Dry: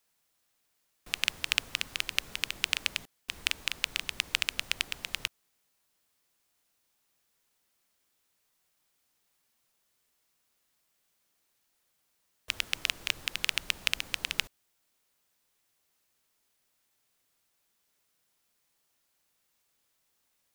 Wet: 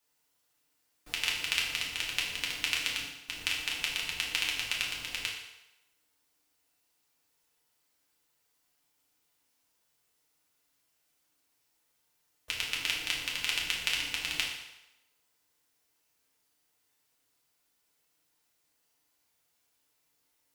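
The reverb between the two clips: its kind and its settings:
feedback delay network reverb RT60 0.95 s, low-frequency decay 0.75×, high-frequency decay 0.9×, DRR −4 dB
level −5 dB

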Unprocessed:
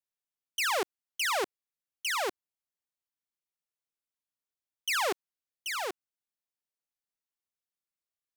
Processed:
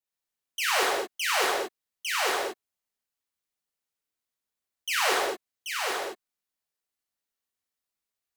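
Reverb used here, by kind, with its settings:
reverb whose tail is shaped and stops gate 250 ms flat, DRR −5.5 dB
level −1.5 dB

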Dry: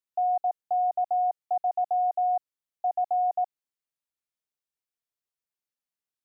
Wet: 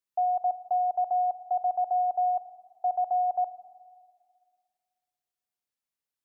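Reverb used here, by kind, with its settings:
four-comb reverb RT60 1.9 s, combs from 26 ms, DRR 13 dB

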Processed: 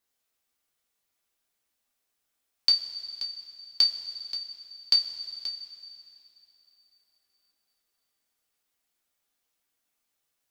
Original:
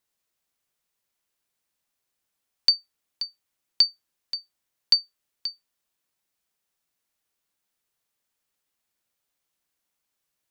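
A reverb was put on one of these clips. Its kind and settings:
coupled-rooms reverb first 0.22 s, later 3.2 s, from −18 dB, DRR −0.5 dB
level −2.5 dB

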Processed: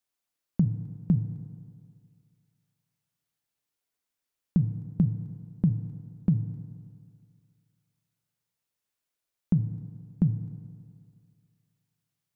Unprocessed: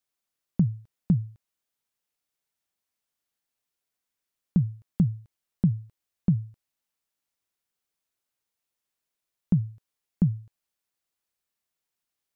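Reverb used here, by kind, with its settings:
feedback delay network reverb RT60 2.2 s, low-frequency decay 0.9×, high-frequency decay 0.55×, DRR 10 dB
level −1 dB

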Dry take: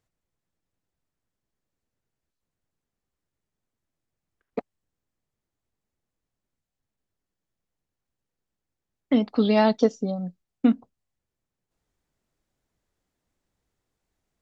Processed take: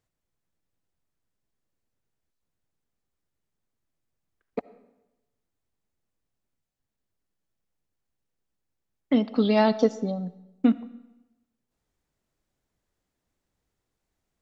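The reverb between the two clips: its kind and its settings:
comb and all-pass reverb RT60 1 s, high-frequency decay 0.85×, pre-delay 35 ms, DRR 18 dB
level −1 dB

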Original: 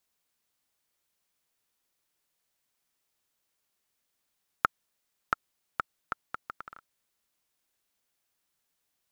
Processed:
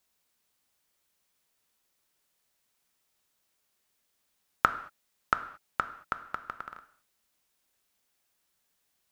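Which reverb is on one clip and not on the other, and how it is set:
reverb whose tail is shaped and stops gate 250 ms falling, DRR 9.5 dB
level +3 dB

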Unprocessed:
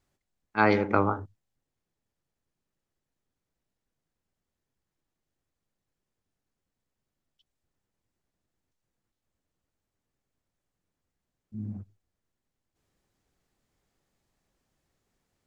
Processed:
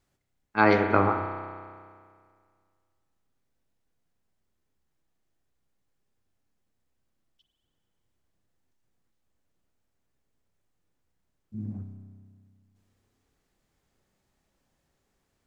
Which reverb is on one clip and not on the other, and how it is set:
spring reverb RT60 2 s, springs 31 ms, chirp 35 ms, DRR 5 dB
level +1.5 dB

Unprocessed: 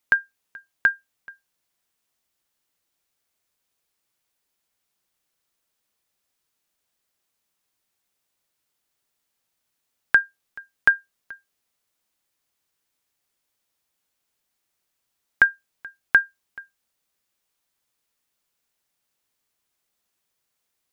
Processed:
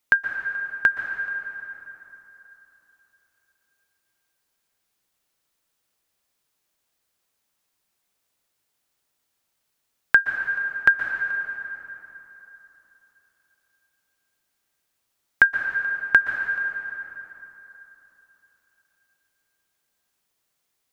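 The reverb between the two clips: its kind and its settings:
dense smooth reverb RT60 3.6 s, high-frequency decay 0.6×, pre-delay 110 ms, DRR 4.5 dB
level +1 dB

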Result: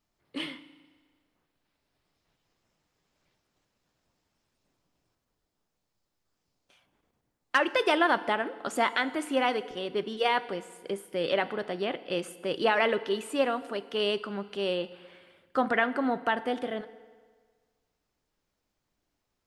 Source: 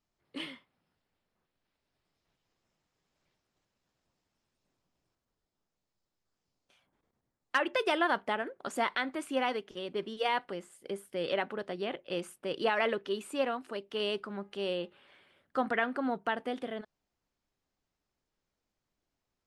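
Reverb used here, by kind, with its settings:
feedback delay network reverb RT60 1.6 s, low-frequency decay 0.9×, high-frequency decay 0.85×, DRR 14 dB
level +4.5 dB

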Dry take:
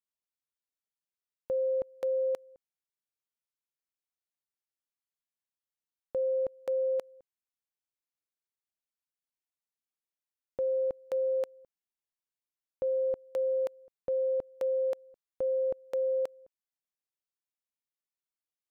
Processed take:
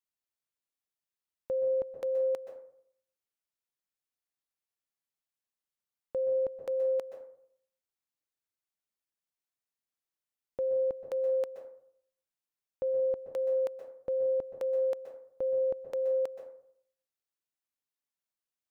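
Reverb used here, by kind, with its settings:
dense smooth reverb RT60 0.63 s, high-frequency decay 0.45×, pre-delay 115 ms, DRR 7.5 dB
level −1 dB

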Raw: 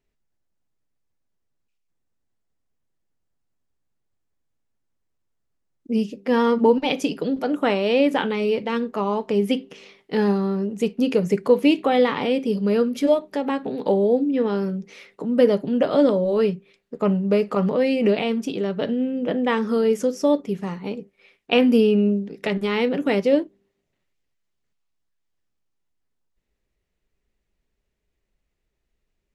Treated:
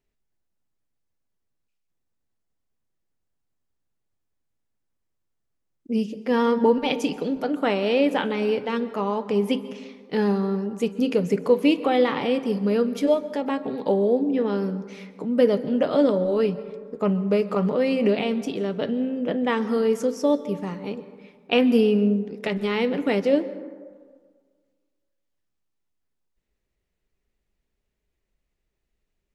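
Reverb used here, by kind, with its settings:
dense smooth reverb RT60 1.7 s, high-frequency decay 0.35×, pre-delay 115 ms, DRR 14.5 dB
level −2 dB

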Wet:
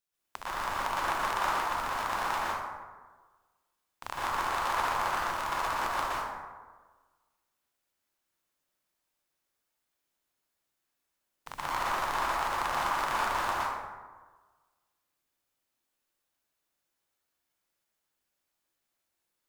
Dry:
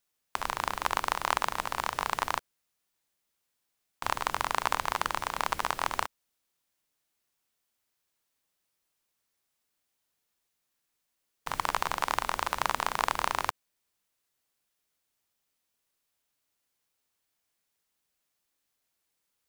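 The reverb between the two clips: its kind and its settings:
dense smooth reverb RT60 1.4 s, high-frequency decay 0.45×, pre-delay 105 ms, DRR −9 dB
level −9.5 dB

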